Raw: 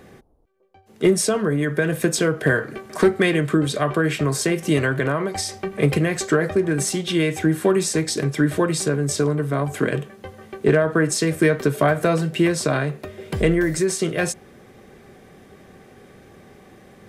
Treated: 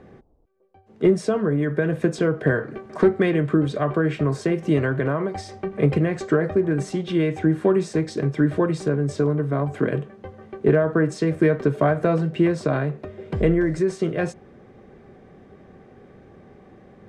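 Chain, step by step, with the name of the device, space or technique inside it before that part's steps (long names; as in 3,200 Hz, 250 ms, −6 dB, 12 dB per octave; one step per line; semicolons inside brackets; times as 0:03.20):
through cloth (low-pass filter 6,900 Hz 12 dB per octave; high-shelf EQ 2,100 Hz −14.5 dB)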